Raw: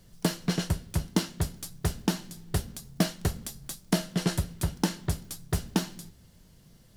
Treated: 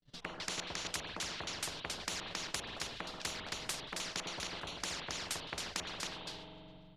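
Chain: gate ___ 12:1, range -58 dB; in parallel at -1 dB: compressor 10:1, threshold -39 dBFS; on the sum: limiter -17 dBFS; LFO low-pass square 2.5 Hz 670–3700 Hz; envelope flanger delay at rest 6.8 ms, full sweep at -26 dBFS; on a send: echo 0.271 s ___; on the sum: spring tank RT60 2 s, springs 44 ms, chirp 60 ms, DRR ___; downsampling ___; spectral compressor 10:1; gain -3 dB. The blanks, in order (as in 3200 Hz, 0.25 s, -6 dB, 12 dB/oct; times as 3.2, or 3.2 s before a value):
-50 dBFS, -8 dB, 13.5 dB, 32000 Hz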